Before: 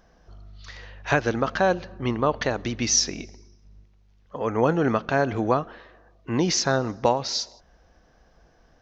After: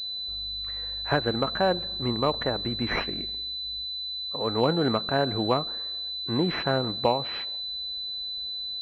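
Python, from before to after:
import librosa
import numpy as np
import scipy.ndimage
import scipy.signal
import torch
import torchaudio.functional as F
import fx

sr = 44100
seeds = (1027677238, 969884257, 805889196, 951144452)

y = fx.pwm(x, sr, carrier_hz=4000.0)
y = y * librosa.db_to_amplitude(-2.5)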